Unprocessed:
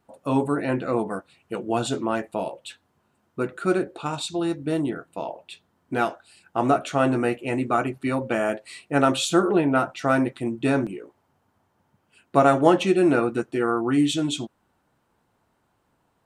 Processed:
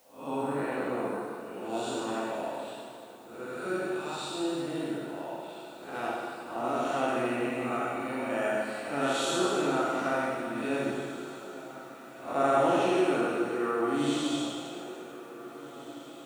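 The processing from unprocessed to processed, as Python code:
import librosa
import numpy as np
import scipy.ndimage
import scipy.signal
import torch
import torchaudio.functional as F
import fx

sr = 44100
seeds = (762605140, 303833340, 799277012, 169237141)

y = fx.spec_blur(x, sr, span_ms=195.0)
y = fx.highpass(y, sr, hz=490.0, slope=6)
y = fx.echo_diffused(y, sr, ms=1813, feedback_pct=46, wet_db=-16)
y = fx.rev_plate(y, sr, seeds[0], rt60_s=2.2, hf_ratio=0.9, predelay_ms=0, drr_db=-3.5)
y = fx.quant_dither(y, sr, seeds[1], bits=10, dither='triangular')
y = y * 10.0 ** (-5.0 / 20.0)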